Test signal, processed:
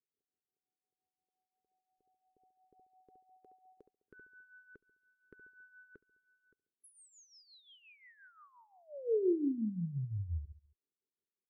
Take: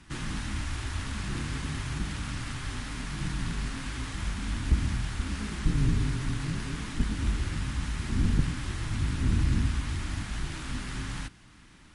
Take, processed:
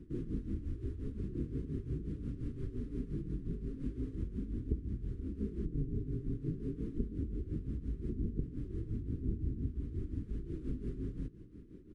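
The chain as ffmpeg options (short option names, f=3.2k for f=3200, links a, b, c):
-filter_complex "[0:a]equalizer=f=6.4k:w=0.4:g=-4.5,acompressor=threshold=-38dB:ratio=4,firequalizer=gain_entry='entry(170,0);entry(420,10);entry(710,-29);entry(1200,-23)':delay=0.05:min_phase=1,asplit=2[a][b];[b]adelay=69,lowpass=f=2.5k:p=1,volume=-14.5dB,asplit=2[c][d];[d]adelay=69,lowpass=f=2.5k:p=1,volume=0.47,asplit=2[e][f];[f]adelay=69,lowpass=f=2.5k:p=1,volume=0.47,asplit=2[g][h];[h]adelay=69,lowpass=f=2.5k:p=1,volume=0.47[i];[a][c][e][g][i]amix=inputs=5:normalize=0,tremolo=f=5.7:d=0.7,volume=4.5dB" -ar 32000 -c:a libvorbis -b:a 128k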